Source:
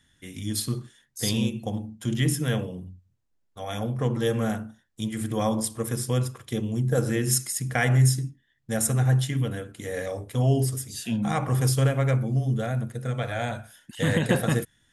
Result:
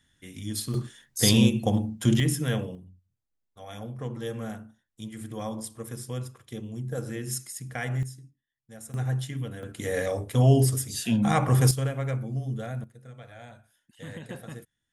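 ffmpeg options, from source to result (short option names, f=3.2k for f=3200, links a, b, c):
-af "asetnsamples=n=441:p=0,asendcmd='0.74 volume volume 6dB;2.2 volume volume -1.5dB;2.75 volume volume -9dB;8.03 volume volume -19dB;8.94 volume volume -7dB;9.63 volume volume 3dB;11.71 volume volume -6.5dB;12.84 volume volume -17dB',volume=-3.5dB"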